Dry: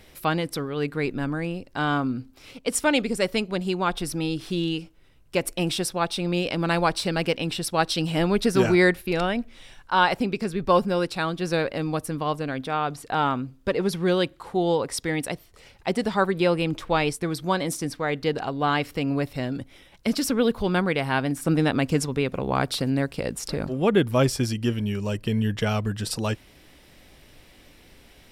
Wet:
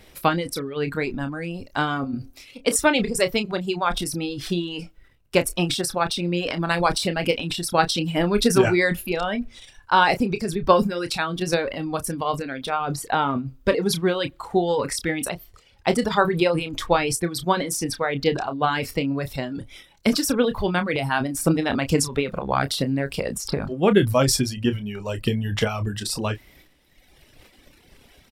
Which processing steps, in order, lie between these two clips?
transient shaper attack +6 dB, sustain +10 dB; reverb removal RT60 1.5 s; doubler 29 ms -10.5 dB; 1.95–2.76 de-hum 90.14 Hz, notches 8

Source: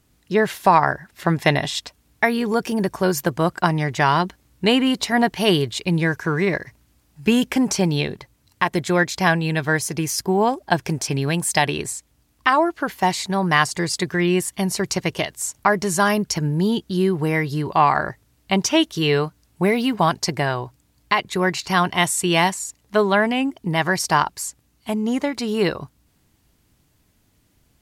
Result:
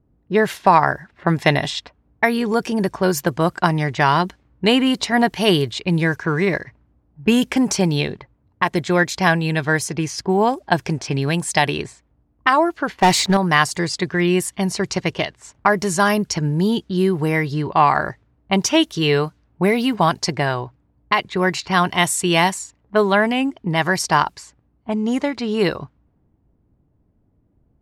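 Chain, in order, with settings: low-pass opened by the level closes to 620 Hz, open at -16.5 dBFS; 12.96–13.37 sample leveller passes 2; gain +1.5 dB

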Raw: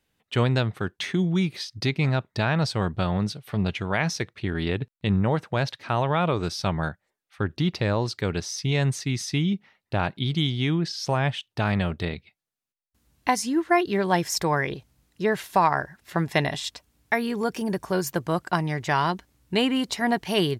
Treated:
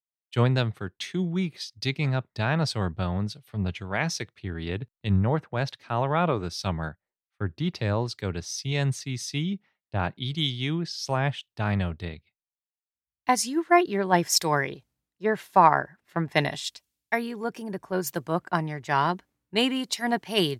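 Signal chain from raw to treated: three-band expander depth 100%; gain -2.5 dB

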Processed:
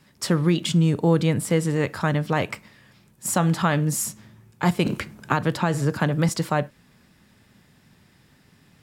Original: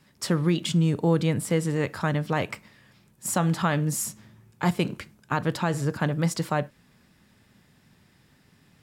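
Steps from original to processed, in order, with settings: 4.86–6.29 three-band squash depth 70%; gain +3 dB

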